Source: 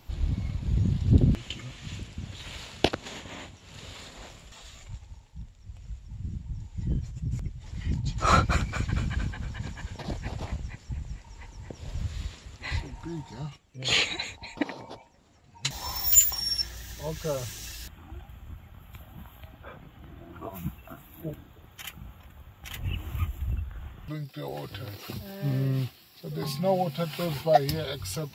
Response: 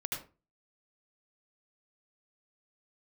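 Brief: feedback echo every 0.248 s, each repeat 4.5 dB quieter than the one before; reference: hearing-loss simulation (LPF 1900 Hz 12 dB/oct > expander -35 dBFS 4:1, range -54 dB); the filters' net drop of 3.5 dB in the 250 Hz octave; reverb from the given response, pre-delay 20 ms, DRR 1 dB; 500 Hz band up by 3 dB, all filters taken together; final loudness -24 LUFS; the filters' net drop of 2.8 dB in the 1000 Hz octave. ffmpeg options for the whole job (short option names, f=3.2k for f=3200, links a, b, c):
-filter_complex "[0:a]equalizer=f=250:t=o:g=-7.5,equalizer=f=500:t=o:g=8,equalizer=f=1k:t=o:g=-7.5,aecho=1:1:248|496|744|992|1240|1488|1736|1984|2232:0.596|0.357|0.214|0.129|0.0772|0.0463|0.0278|0.0167|0.01,asplit=2[a][b];[1:a]atrim=start_sample=2205,adelay=20[c];[b][c]afir=irnorm=-1:irlink=0,volume=-3.5dB[d];[a][d]amix=inputs=2:normalize=0,lowpass=1.9k,agate=range=-54dB:threshold=-35dB:ratio=4,volume=4.5dB"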